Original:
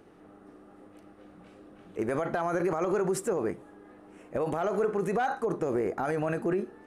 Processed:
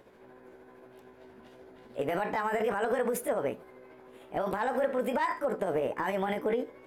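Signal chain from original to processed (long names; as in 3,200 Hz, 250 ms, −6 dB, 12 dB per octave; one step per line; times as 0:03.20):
pitch shift by two crossfaded delay taps +4 semitones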